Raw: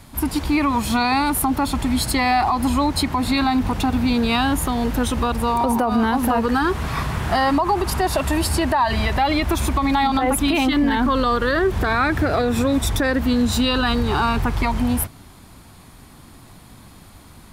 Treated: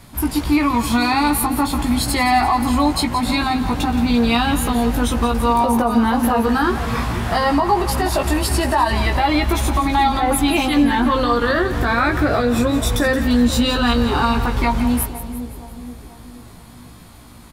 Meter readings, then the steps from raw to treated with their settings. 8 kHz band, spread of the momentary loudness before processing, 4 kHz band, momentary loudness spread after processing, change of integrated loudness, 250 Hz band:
+2.0 dB, 3 LU, +2.0 dB, 4 LU, +2.0 dB, +2.5 dB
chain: doubling 17 ms -4 dB; two-band feedback delay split 730 Hz, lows 478 ms, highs 173 ms, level -11.5 dB

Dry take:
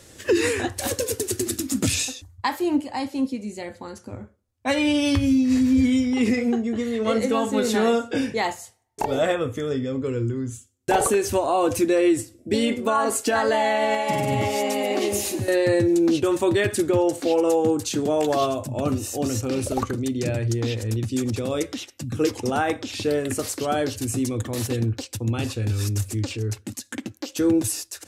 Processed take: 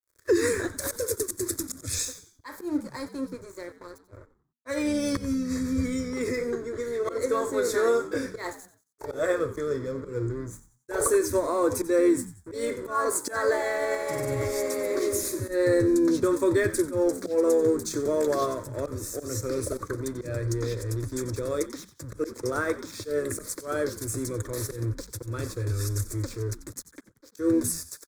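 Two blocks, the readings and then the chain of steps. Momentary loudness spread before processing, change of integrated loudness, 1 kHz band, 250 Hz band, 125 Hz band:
9 LU, -4.5 dB, -8.5 dB, -6.5 dB, -5.5 dB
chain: crossover distortion -40.5 dBFS; static phaser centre 780 Hz, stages 6; slow attack 129 ms; on a send: frequency-shifting echo 91 ms, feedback 37%, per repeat -81 Hz, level -15 dB

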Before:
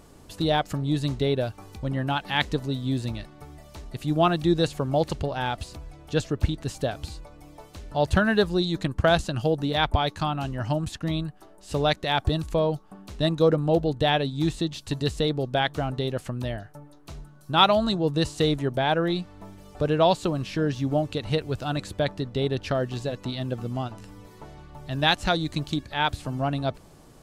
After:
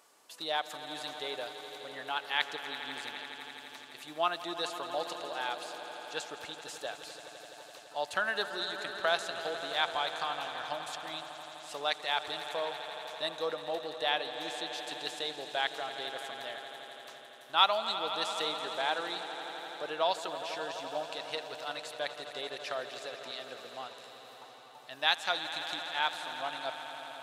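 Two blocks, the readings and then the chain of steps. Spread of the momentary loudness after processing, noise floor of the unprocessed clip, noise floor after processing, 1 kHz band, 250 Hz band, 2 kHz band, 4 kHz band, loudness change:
14 LU, -51 dBFS, -52 dBFS, -6.5 dB, -22.5 dB, -4.0 dB, -4.0 dB, -9.0 dB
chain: high-pass 820 Hz 12 dB/octave; on a send: echo with a slow build-up 84 ms, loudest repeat 5, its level -14.5 dB; on the sum: trim -5 dB

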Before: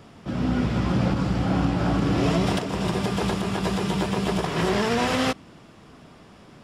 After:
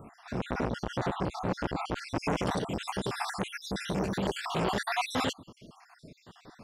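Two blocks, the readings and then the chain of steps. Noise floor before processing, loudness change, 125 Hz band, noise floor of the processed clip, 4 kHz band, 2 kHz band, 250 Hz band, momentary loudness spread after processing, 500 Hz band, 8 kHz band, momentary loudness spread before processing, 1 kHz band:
-49 dBFS, -8.5 dB, -11.5 dB, -62 dBFS, -6.5 dB, -5.5 dB, -11.0 dB, 5 LU, -7.5 dB, -6.0 dB, 4 LU, -5.0 dB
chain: random holes in the spectrogram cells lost 61%; transformer saturation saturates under 940 Hz

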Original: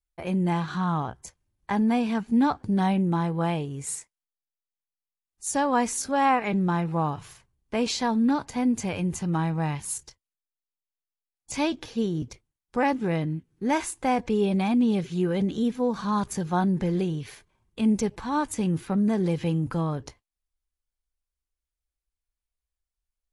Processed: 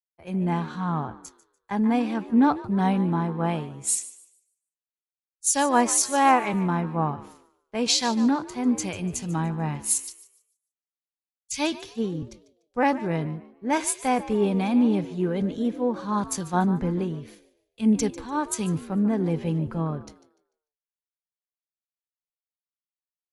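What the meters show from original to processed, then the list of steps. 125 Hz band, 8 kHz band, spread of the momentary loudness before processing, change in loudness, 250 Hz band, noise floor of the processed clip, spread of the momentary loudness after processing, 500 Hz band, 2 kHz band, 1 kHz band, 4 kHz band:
-0.5 dB, +8.0 dB, 9 LU, +1.5 dB, +0.5 dB, under -85 dBFS, 10 LU, +0.5 dB, +1.0 dB, +1.5 dB, +5.0 dB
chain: frequency-shifting echo 148 ms, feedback 53%, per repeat +60 Hz, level -13.5 dB; three bands expanded up and down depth 100%

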